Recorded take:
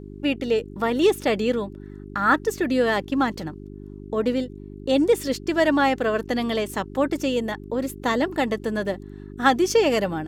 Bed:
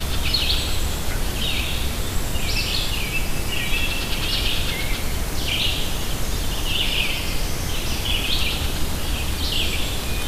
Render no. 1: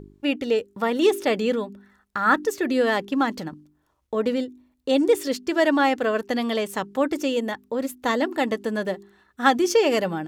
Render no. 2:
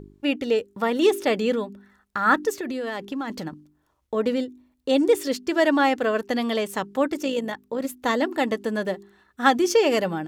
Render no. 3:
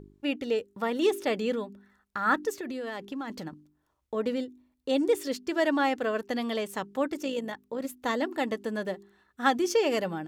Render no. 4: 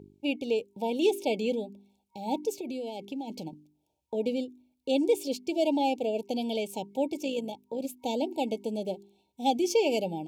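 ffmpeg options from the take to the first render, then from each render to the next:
-af "bandreject=f=50:t=h:w=4,bandreject=f=100:t=h:w=4,bandreject=f=150:t=h:w=4,bandreject=f=200:t=h:w=4,bandreject=f=250:t=h:w=4,bandreject=f=300:t=h:w=4,bandreject=f=350:t=h:w=4,bandreject=f=400:t=h:w=4"
-filter_complex "[0:a]asettb=1/sr,asplit=3[a][b][c];[a]atrim=end=2.594[d];[b]atrim=start=2.59:end=3.3,asetpts=PTS-STARTPTS,afade=t=in:d=0.004:c=qsin,afade=t=out:st=0.706:d=0.004:c=qsin,acompressor=threshold=-26dB:ratio=6:attack=3.2:release=140:knee=1:detection=peak[e];[c]atrim=start=3.296[f];[d][e]acrossfade=d=0.004:c1=hsin:c2=qsin[g];[g][f]acrossfade=d=0.004:c1=qsin:c2=hsin,asettb=1/sr,asplit=3[h][i][j];[h]atrim=end=7.064[k];[i]atrim=start=7.06:end=7.85,asetpts=PTS-STARTPTS,afade=t=in:d=0.004:c=qsin,afade=t=out:st=0.786:d=0.004:c=qsin,tremolo=f=55:d=0.4[l];[j]atrim=start=7.846[m];[k][l]acrossfade=d=0.004:c1=hsin:c2=qsin[n];[n][m]acrossfade=d=0.004:c1=qsin:c2=hsin"
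-af "volume=-6dB"
-af "highpass=92,afftfilt=real='re*(1-between(b*sr/4096,940,2200))':imag='im*(1-between(b*sr/4096,940,2200))':win_size=4096:overlap=0.75"

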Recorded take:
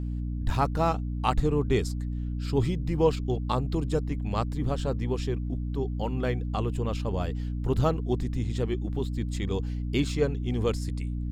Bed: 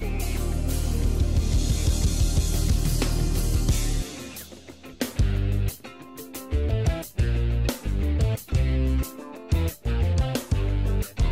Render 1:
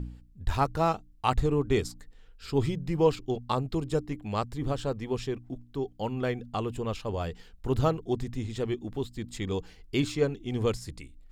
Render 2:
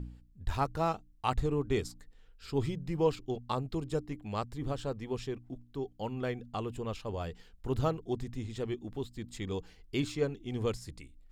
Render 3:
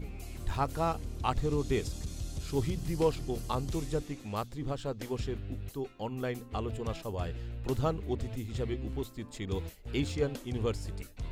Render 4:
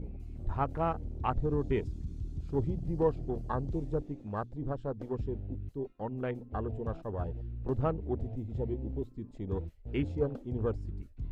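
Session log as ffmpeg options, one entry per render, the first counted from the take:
-af "bandreject=f=60:t=h:w=4,bandreject=f=120:t=h:w=4,bandreject=f=180:t=h:w=4,bandreject=f=240:t=h:w=4,bandreject=f=300:t=h:w=4"
-af "volume=-5dB"
-filter_complex "[1:a]volume=-16dB[a];[0:a][a]amix=inputs=2:normalize=0"
-af "afwtdn=0.00891,lowpass=f=2.5k:p=1"

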